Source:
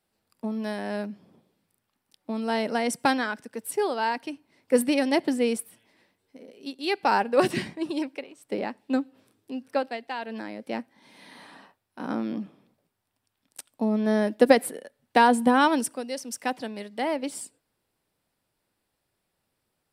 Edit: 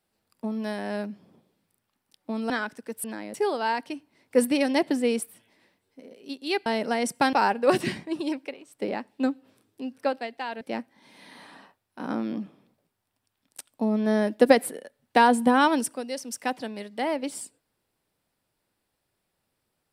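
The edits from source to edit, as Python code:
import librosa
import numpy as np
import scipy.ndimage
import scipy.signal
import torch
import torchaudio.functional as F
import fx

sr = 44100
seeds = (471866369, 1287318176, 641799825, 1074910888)

y = fx.edit(x, sr, fx.move(start_s=2.5, length_s=0.67, to_s=7.03),
    fx.move(start_s=10.31, length_s=0.3, to_s=3.71), tone=tone)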